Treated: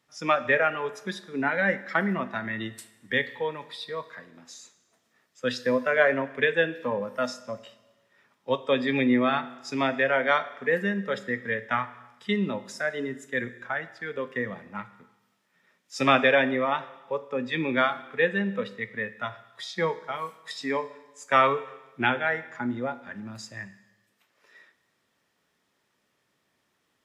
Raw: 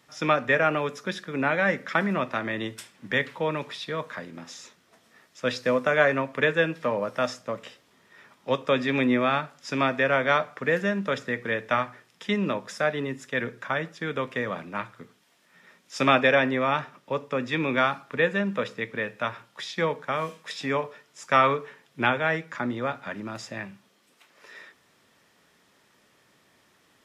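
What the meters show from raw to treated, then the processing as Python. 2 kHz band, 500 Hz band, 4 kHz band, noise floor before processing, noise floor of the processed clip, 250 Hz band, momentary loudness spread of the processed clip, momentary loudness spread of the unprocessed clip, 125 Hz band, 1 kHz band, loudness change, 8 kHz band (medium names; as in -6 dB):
-0.5 dB, -1.0 dB, -1.0 dB, -63 dBFS, -74 dBFS, -0.5 dB, 17 LU, 14 LU, -3.5 dB, -1.5 dB, -0.5 dB, -1.0 dB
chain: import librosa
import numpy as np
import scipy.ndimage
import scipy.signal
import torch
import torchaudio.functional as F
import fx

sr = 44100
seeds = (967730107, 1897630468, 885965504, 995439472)

y = fx.noise_reduce_blind(x, sr, reduce_db=11)
y = fx.rev_schroeder(y, sr, rt60_s=1.1, comb_ms=25, drr_db=14.5)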